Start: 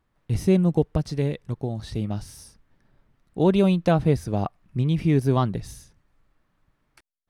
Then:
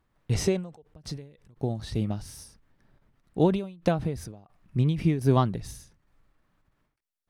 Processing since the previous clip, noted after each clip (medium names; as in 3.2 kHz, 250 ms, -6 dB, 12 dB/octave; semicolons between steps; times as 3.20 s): time-frequency box 0.32–0.82 s, 380–8600 Hz +9 dB; endings held to a fixed fall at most 110 dB/s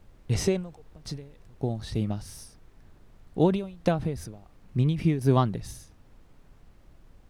added noise brown -52 dBFS